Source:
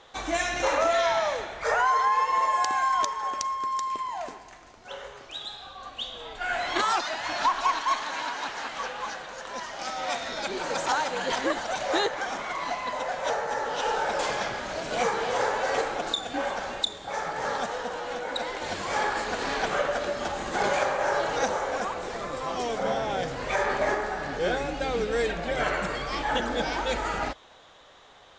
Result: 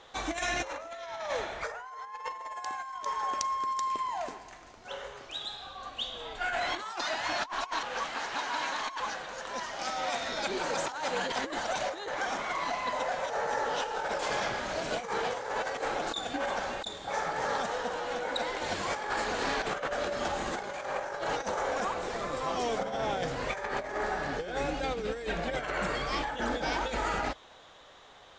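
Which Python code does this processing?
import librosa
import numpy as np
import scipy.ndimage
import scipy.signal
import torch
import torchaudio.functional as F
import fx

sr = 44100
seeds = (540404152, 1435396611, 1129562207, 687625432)

y = fx.edit(x, sr, fx.reverse_span(start_s=7.83, length_s=1.17), tone=tone)
y = fx.over_compress(y, sr, threshold_db=-29.0, ratio=-0.5)
y = y * librosa.db_to_amplitude(-3.0)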